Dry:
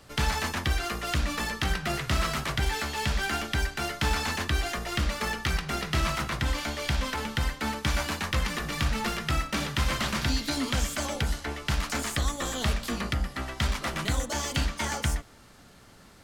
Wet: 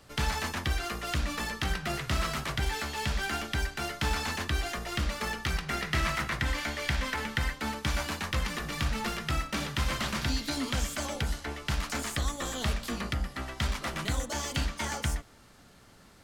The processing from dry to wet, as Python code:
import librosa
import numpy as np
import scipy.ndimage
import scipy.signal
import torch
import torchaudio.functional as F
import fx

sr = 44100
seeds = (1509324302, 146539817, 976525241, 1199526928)

y = fx.peak_eq(x, sr, hz=1900.0, db=6.5, octaves=0.64, at=(5.68, 7.54))
y = y * 10.0 ** (-3.0 / 20.0)